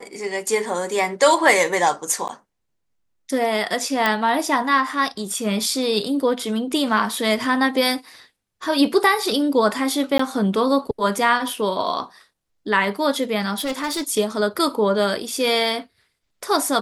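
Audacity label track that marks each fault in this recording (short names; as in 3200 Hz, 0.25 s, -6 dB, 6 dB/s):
2.280000	2.290000	gap 9.4 ms
4.060000	4.060000	pop -6 dBFS
10.180000	10.190000	gap 14 ms
13.580000	14.100000	clipped -20.5 dBFS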